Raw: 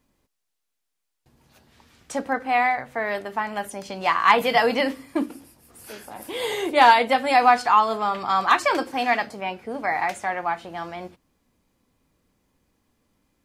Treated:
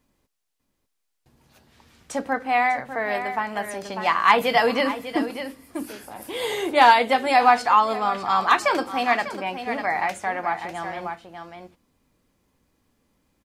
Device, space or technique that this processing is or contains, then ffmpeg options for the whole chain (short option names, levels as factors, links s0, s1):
ducked delay: -filter_complex "[0:a]asplit=3[s0][s1][s2];[s1]adelay=597,volume=0.473[s3];[s2]apad=whole_len=619126[s4];[s3][s4]sidechaincompress=threshold=0.0708:ratio=8:attack=28:release=1100[s5];[s0][s5]amix=inputs=2:normalize=0"